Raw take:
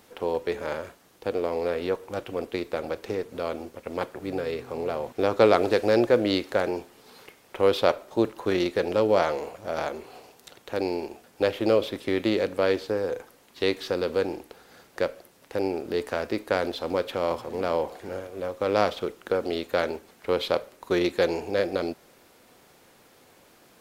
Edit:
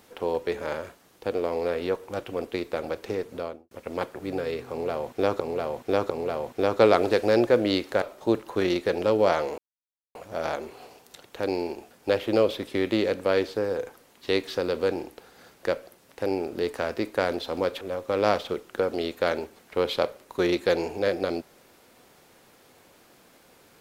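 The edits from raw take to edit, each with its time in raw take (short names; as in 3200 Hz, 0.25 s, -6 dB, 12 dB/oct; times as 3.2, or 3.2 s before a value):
3.31–3.71 studio fade out
4.7–5.4 loop, 3 plays
6.62–7.92 cut
9.48 insert silence 0.57 s
17.14–18.33 cut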